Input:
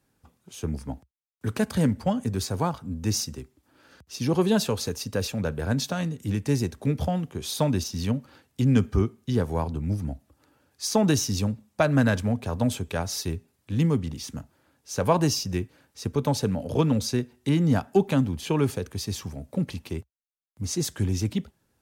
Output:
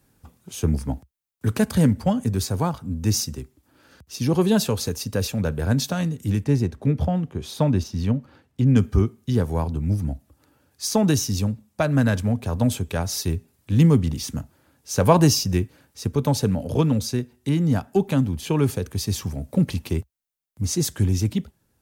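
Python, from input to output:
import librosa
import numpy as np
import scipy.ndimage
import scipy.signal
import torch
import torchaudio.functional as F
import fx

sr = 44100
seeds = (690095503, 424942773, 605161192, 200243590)

y = fx.lowpass(x, sr, hz=2200.0, slope=6, at=(6.44, 8.76))
y = fx.low_shelf(y, sr, hz=210.0, db=5.5)
y = fx.rider(y, sr, range_db=10, speed_s=2.0)
y = fx.high_shelf(y, sr, hz=9100.0, db=7.0)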